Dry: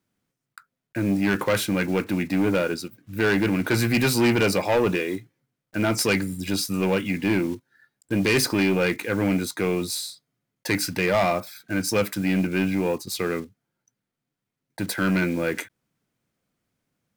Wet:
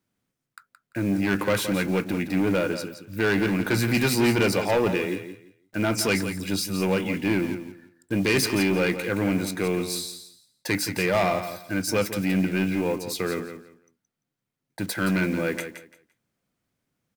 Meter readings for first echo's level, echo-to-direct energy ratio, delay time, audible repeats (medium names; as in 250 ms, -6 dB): -10.0 dB, -10.0 dB, 171 ms, 2